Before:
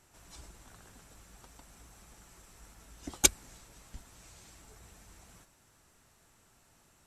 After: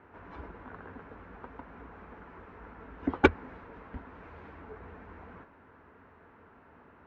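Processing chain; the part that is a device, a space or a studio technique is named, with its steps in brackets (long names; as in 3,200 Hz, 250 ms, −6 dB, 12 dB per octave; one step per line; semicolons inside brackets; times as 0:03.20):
bass cabinet (loudspeaker in its box 67–2,100 Hz, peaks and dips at 87 Hz +6 dB, 120 Hz −10 dB, 260 Hz +7 dB, 450 Hz +9 dB, 1,000 Hz +6 dB, 1,500 Hz +4 dB)
level +8.5 dB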